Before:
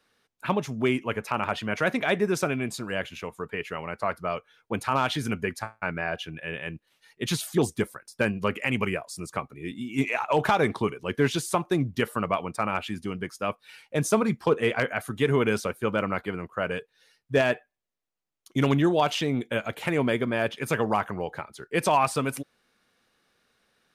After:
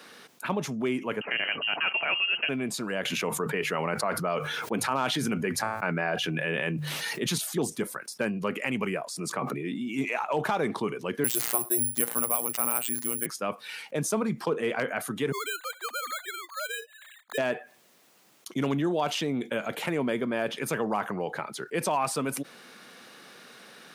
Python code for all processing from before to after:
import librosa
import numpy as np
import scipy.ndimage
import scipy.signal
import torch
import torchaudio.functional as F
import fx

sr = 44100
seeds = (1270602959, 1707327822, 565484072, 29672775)

y = fx.chain(x, sr, fx.low_shelf(hz=370.0, db=8.5),
    fx.freq_invert(carrier_hz=3000), at=(1.21, 2.49))
y = fx.chain(y, sr, fx.hum_notches(base_hz=50, count=3),
    fx.env_flatten(amount_pct=70), at=(3.05, 7.38))
y = fx.chain(y, sr, fx.highpass(hz=110.0, slope=12),
    fx.high_shelf(hz=3700.0, db=-7.5),
    fx.sustainer(db_per_s=45.0), at=(9.09, 9.88))
y = fx.chain(y, sr, fx.robotise(hz=119.0),
    fx.resample_bad(factor=4, down='none', up='zero_stuff'), at=(11.24, 13.26))
y = fx.chain(y, sr, fx.sine_speech(),
    fx.highpass(hz=1300.0, slope=12),
    fx.resample_bad(factor=8, down='filtered', up='hold'), at=(15.32, 17.38))
y = scipy.signal.sosfilt(scipy.signal.butter(4, 150.0, 'highpass', fs=sr, output='sos'), y)
y = fx.dynamic_eq(y, sr, hz=2600.0, q=0.72, threshold_db=-37.0, ratio=4.0, max_db=-3)
y = fx.env_flatten(y, sr, amount_pct=50)
y = y * librosa.db_to_amplitude(-7.0)